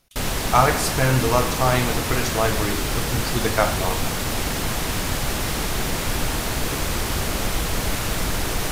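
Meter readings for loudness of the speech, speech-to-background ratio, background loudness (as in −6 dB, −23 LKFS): −23.0 LKFS, 1.5 dB, −24.5 LKFS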